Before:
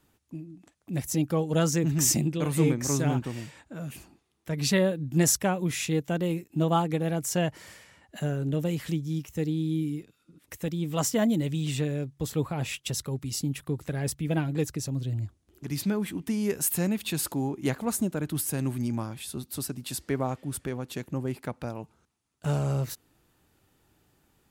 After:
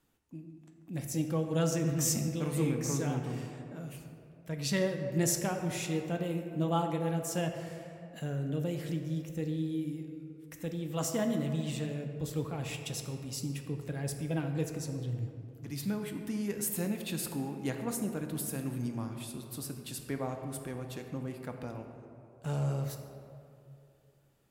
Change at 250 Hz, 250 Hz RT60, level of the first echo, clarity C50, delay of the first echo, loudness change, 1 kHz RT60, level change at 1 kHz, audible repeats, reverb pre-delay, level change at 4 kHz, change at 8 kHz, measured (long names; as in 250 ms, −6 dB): −5.5 dB, 2.5 s, no echo audible, 6.0 dB, no echo audible, −6.0 dB, 2.3 s, −5.5 dB, no echo audible, 4 ms, −6.5 dB, −7.0 dB